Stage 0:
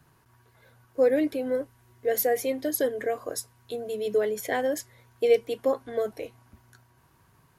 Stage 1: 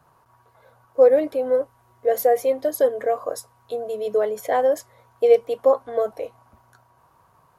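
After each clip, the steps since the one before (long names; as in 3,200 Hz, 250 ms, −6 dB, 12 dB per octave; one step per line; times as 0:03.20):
flat-topped bell 790 Hz +11.5 dB
level −2.5 dB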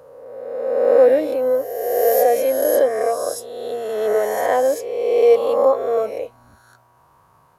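peak hold with a rise ahead of every peak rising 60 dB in 1.63 s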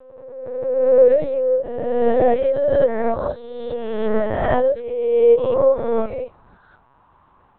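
linear-prediction vocoder at 8 kHz pitch kept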